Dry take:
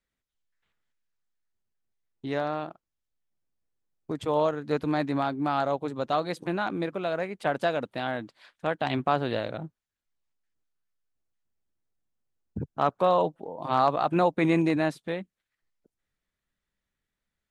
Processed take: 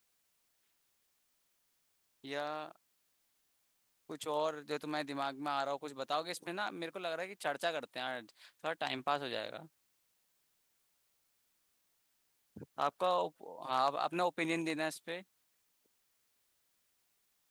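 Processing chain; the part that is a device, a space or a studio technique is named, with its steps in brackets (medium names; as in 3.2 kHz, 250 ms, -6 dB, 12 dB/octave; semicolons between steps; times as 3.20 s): turntable without a phono preamp (RIAA curve recording; white noise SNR 37 dB); trim -8.5 dB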